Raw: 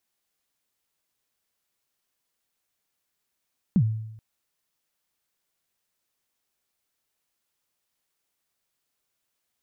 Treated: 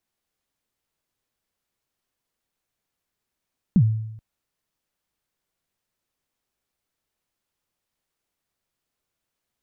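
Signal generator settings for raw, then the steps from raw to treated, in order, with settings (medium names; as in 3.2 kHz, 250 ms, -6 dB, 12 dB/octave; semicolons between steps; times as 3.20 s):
kick drum length 0.43 s, from 220 Hz, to 110 Hz, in 67 ms, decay 0.86 s, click off, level -14 dB
tilt EQ -1.5 dB/octave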